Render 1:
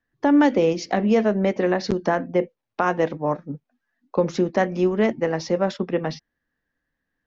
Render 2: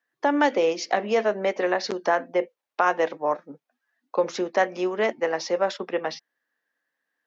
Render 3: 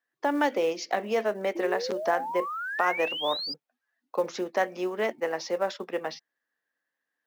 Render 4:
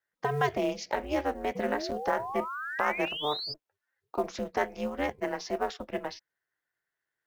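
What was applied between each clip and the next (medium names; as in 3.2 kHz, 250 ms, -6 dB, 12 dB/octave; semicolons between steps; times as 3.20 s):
high-pass 510 Hz 12 dB/octave; trim +1.5 dB
painted sound rise, 1.55–3.54 s, 330–5000 Hz -29 dBFS; short-mantissa float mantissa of 4-bit; trim -4.5 dB
ring modulator 150 Hz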